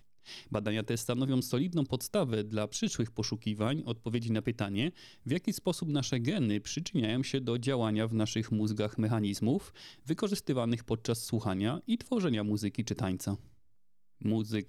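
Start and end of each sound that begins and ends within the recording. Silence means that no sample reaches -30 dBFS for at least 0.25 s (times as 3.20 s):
0.53–4.89 s
5.27–9.58 s
10.10–13.34 s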